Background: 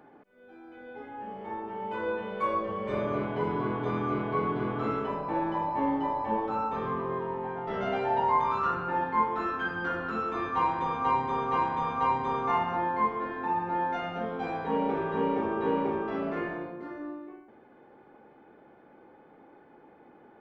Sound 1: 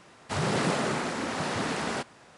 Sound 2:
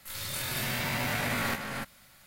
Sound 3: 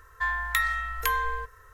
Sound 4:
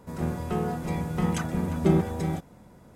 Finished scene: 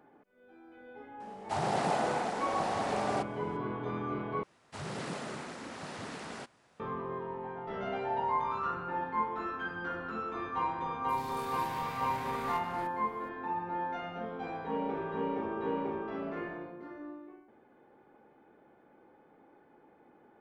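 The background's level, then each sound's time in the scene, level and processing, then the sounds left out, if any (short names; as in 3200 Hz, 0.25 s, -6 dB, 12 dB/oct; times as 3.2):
background -6 dB
1.2 add 1 -8.5 dB + bell 760 Hz +14.5 dB 0.58 oct
4.43 replace with 1 -12 dB
11.03 add 2 -13.5 dB + high shelf 8400 Hz -7 dB
not used: 3, 4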